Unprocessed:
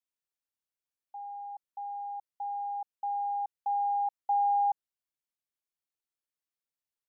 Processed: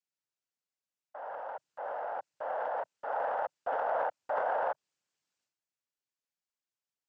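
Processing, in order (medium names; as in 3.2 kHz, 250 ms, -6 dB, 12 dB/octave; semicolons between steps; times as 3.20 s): compression, threshold -30 dBFS, peak gain reduction 5.5 dB; noise-vocoded speech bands 8; transient shaper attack -2 dB, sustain +11 dB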